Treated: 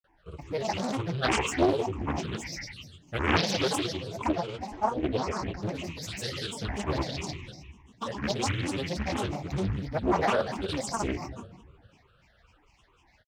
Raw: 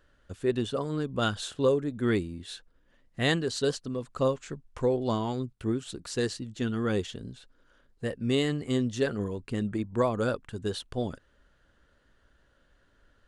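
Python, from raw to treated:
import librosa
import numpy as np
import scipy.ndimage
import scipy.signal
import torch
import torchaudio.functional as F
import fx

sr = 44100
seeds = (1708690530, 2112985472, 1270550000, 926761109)

p1 = scipy.signal.sosfilt(scipy.signal.butter(2, 50.0, 'highpass', fs=sr, output='sos'), x)
p2 = fx.hum_notches(p1, sr, base_hz=60, count=7)
p3 = fx.rider(p2, sr, range_db=4, speed_s=2.0)
p4 = p2 + (p3 * librosa.db_to_amplitude(-1.0))
p5 = fx.fixed_phaser(p4, sr, hz=1500.0, stages=8)
p6 = p5 + fx.echo_stepped(p5, sr, ms=103, hz=3300.0, octaves=0.7, feedback_pct=70, wet_db=-1.0, dry=0)
p7 = fx.room_shoebox(p6, sr, seeds[0], volume_m3=580.0, walls='mixed', distance_m=1.1)
p8 = fx.granulator(p7, sr, seeds[1], grain_ms=100.0, per_s=20.0, spray_ms=100.0, spread_st=12)
p9 = fx.doppler_dist(p8, sr, depth_ms=0.8)
y = p9 * librosa.db_to_amplitude(-2.5)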